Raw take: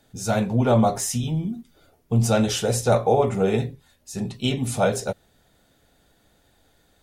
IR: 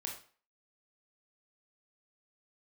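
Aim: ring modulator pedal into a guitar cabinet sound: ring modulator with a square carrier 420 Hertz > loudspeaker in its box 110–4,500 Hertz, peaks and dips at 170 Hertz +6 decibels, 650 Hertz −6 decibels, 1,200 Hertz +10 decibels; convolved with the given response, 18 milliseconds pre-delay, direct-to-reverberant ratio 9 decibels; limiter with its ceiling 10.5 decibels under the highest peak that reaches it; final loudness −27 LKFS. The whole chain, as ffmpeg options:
-filter_complex "[0:a]alimiter=limit=-16.5dB:level=0:latency=1,asplit=2[link_01][link_02];[1:a]atrim=start_sample=2205,adelay=18[link_03];[link_02][link_03]afir=irnorm=-1:irlink=0,volume=-8.5dB[link_04];[link_01][link_04]amix=inputs=2:normalize=0,aeval=exprs='val(0)*sgn(sin(2*PI*420*n/s))':channel_layout=same,highpass=110,equalizer=frequency=170:width_type=q:width=4:gain=6,equalizer=frequency=650:width_type=q:width=4:gain=-6,equalizer=frequency=1200:width_type=q:width=4:gain=10,lowpass=frequency=4500:width=0.5412,lowpass=frequency=4500:width=1.3066,volume=-2.5dB"

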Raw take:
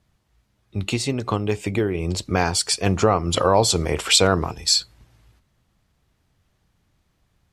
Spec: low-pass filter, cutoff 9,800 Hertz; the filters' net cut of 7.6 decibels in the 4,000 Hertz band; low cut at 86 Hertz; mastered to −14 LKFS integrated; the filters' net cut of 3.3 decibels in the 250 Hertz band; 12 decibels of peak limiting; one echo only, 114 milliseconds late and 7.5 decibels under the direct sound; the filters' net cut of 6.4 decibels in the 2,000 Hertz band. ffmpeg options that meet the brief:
ffmpeg -i in.wav -af "highpass=86,lowpass=9800,equalizer=frequency=250:width_type=o:gain=-4.5,equalizer=frequency=2000:width_type=o:gain=-7,equalizer=frequency=4000:width_type=o:gain=-7.5,alimiter=limit=-17dB:level=0:latency=1,aecho=1:1:114:0.422,volume=14dB" out.wav

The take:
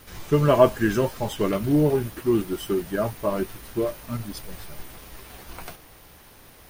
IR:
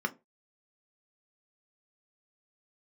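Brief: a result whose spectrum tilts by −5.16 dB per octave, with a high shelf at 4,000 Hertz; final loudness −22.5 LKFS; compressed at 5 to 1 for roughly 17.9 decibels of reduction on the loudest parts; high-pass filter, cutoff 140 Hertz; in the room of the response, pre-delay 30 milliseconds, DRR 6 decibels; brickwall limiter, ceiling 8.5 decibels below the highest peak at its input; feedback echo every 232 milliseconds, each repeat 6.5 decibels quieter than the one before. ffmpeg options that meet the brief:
-filter_complex "[0:a]highpass=140,highshelf=frequency=4000:gain=-7.5,acompressor=threshold=-31dB:ratio=5,alimiter=level_in=4dB:limit=-24dB:level=0:latency=1,volume=-4dB,aecho=1:1:232|464|696|928|1160|1392:0.473|0.222|0.105|0.0491|0.0231|0.0109,asplit=2[link_01][link_02];[1:a]atrim=start_sample=2205,adelay=30[link_03];[link_02][link_03]afir=irnorm=-1:irlink=0,volume=-12dB[link_04];[link_01][link_04]amix=inputs=2:normalize=0,volume=15dB"

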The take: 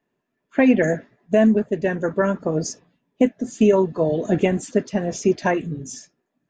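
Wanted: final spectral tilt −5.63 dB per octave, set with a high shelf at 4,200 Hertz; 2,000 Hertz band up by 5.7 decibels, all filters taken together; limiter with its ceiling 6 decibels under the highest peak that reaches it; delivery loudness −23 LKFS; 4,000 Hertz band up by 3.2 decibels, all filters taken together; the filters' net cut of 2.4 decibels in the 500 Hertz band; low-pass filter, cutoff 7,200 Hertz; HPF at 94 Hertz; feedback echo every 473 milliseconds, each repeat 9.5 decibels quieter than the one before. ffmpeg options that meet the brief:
ffmpeg -i in.wav -af "highpass=94,lowpass=7200,equalizer=frequency=500:width_type=o:gain=-3.5,equalizer=frequency=2000:width_type=o:gain=7,equalizer=frequency=4000:width_type=o:gain=6.5,highshelf=frequency=4200:gain=-7,alimiter=limit=-11.5dB:level=0:latency=1,aecho=1:1:473|946|1419|1892:0.335|0.111|0.0365|0.012,volume=0.5dB" out.wav

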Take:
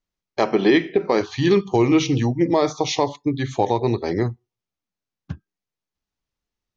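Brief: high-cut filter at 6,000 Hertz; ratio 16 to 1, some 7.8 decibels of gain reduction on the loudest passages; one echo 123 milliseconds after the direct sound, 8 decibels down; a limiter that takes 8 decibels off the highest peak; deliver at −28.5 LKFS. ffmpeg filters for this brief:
ffmpeg -i in.wav -af "lowpass=6000,acompressor=threshold=-19dB:ratio=16,alimiter=limit=-16dB:level=0:latency=1,aecho=1:1:123:0.398,volume=-2dB" out.wav

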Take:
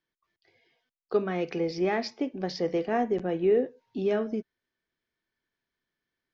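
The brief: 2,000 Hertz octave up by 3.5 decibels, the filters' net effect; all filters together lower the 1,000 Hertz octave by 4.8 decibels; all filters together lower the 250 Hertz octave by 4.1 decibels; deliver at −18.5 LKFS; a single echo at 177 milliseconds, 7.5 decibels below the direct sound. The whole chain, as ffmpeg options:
ffmpeg -i in.wav -af "equalizer=frequency=250:width_type=o:gain=-5.5,equalizer=frequency=1000:width_type=o:gain=-8.5,equalizer=frequency=2000:width_type=o:gain=6.5,aecho=1:1:177:0.422,volume=12.5dB" out.wav

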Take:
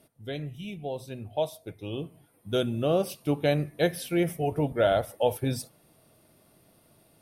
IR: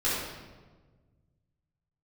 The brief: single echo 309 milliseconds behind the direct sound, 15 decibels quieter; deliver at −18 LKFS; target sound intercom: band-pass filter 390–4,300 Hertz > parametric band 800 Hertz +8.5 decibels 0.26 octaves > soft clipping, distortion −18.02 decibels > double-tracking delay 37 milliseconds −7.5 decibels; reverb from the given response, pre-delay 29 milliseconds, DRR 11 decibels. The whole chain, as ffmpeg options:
-filter_complex "[0:a]aecho=1:1:309:0.178,asplit=2[link_01][link_02];[1:a]atrim=start_sample=2205,adelay=29[link_03];[link_02][link_03]afir=irnorm=-1:irlink=0,volume=-22dB[link_04];[link_01][link_04]amix=inputs=2:normalize=0,highpass=390,lowpass=4300,equalizer=frequency=800:width_type=o:width=0.26:gain=8.5,asoftclip=threshold=-16dB,asplit=2[link_05][link_06];[link_06]adelay=37,volume=-7.5dB[link_07];[link_05][link_07]amix=inputs=2:normalize=0,volume=12.5dB"

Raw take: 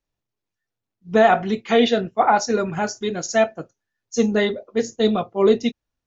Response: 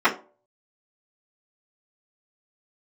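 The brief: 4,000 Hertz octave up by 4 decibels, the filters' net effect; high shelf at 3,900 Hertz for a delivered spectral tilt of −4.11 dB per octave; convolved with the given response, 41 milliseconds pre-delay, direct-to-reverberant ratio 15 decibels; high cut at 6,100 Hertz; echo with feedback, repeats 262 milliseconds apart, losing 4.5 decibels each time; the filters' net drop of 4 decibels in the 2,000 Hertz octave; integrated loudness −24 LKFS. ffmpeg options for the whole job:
-filter_complex "[0:a]lowpass=6100,equalizer=frequency=2000:width_type=o:gain=-7.5,highshelf=frequency=3900:gain=6,equalizer=frequency=4000:width_type=o:gain=4.5,aecho=1:1:262|524|786|1048|1310|1572|1834|2096|2358:0.596|0.357|0.214|0.129|0.0772|0.0463|0.0278|0.0167|0.01,asplit=2[link_01][link_02];[1:a]atrim=start_sample=2205,adelay=41[link_03];[link_02][link_03]afir=irnorm=-1:irlink=0,volume=-35dB[link_04];[link_01][link_04]amix=inputs=2:normalize=0,volume=-5dB"

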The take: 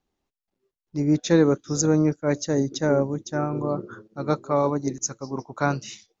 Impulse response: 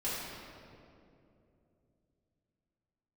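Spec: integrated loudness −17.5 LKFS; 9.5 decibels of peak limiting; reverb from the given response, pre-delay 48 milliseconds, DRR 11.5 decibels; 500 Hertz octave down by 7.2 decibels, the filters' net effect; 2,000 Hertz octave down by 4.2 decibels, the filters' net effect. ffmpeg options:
-filter_complex "[0:a]equalizer=frequency=500:width_type=o:gain=-8.5,equalizer=frequency=2000:width_type=o:gain=-5.5,alimiter=limit=-19dB:level=0:latency=1,asplit=2[link_01][link_02];[1:a]atrim=start_sample=2205,adelay=48[link_03];[link_02][link_03]afir=irnorm=-1:irlink=0,volume=-17dB[link_04];[link_01][link_04]amix=inputs=2:normalize=0,volume=13dB"

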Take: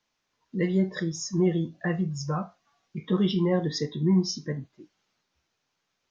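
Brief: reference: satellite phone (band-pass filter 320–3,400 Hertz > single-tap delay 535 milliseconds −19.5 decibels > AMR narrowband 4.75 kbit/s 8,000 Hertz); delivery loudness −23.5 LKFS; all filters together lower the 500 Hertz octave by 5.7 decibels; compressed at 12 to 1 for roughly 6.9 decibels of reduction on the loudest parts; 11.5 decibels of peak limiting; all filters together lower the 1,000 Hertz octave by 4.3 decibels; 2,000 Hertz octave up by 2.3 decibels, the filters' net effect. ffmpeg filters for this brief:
ffmpeg -i in.wav -af "equalizer=frequency=500:width_type=o:gain=-5.5,equalizer=frequency=1000:width_type=o:gain=-5,equalizer=frequency=2000:width_type=o:gain=4.5,acompressor=threshold=-26dB:ratio=12,alimiter=level_in=5dB:limit=-24dB:level=0:latency=1,volume=-5dB,highpass=320,lowpass=3400,aecho=1:1:535:0.106,volume=23dB" -ar 8000 -c:a libopencore_amrnb -b:a 4750 out.amr

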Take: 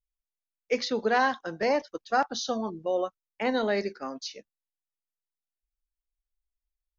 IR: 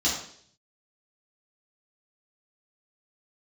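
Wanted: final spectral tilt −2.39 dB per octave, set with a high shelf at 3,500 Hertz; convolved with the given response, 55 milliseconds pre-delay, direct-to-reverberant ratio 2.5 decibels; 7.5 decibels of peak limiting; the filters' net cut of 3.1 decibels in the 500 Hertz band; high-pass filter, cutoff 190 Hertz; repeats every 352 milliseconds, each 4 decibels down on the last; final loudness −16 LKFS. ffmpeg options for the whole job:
-filter_complex "[0:a]highpass=190,equalizer=frequency=500:width_type=o:gain=-3.5,highshelf=frequency=3500:gain=4.5,alimiter=limit=-19.5dB:level=0:latency=1,aecho=1:1:352|704|1056|1408|1760|2112|2464|2816|3168:0.631|0.398|0.25|0.158|0.0994|0.0626|0.0394|0.0249|0.0157,asplit=2[link_01][link_02];[1:a]atrim=start_sample=2205,adelay=55[link_03];[link_02][link_03]afir=irnorm=-1:irlink=0,volume=-13.5dB[link_04];[link_01][link_04]amix=inputs=2:normalize=0,volume=11.5dB"

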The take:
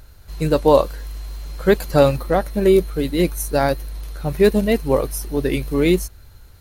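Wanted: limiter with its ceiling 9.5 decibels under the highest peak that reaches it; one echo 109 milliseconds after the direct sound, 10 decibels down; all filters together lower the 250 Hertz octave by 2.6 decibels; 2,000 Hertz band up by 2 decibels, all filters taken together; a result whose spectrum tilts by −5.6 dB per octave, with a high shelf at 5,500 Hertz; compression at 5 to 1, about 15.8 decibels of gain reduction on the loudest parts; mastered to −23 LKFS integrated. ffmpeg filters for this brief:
ffmpeg -i in.wav -af "equalizer=frequency=250:width_type=o:gain=-4,equalizer=frequency=2000:width_type=o:gain=3.5,highshelf=frequency=5500:gain=-7.5,acompressor=threshold=-28dB:ratio=5,alimiter=level_in=1.5dB:limit=-24dB:level=0:latency=1,volume=-1.5dB,aecho=1:1:109:0.316,volume=13dB" out.wav

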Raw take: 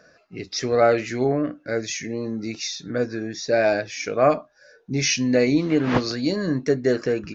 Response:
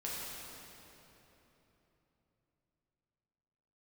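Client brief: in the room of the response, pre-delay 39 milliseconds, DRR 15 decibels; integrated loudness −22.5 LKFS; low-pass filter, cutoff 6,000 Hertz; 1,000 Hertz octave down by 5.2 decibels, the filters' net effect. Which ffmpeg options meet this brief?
-filter_complex "[0:a]lowpass=6000,equalizer=frequency=1000:width_type=o:gain=-8.5,asplit=2[link_01][link_02];[1:a]atrim=start_sample=2205,adelay=39[link_03];[link_02][link_03]afir=irnorm=-1:irlink=0,volume=-17.5dB[link_04];[link_01][link_04]amix=inputs=2:normalize=0,volume=1.5dB"

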